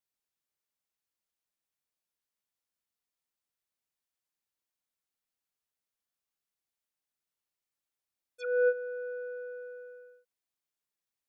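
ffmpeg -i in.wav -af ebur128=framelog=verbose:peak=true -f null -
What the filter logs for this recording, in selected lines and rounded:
Integrated loudness:
  I:         -33.1 LUFS
  Threshold: -44.7 LUFS
Loudness range:
  LRA:         1.0 LU
  Threshold: -56.5 LUFS
  LRA low:   -37.1 LUFS
  LRA high:  -36.1 LUFS
True peak:
  Peak:      -17.9 dBFS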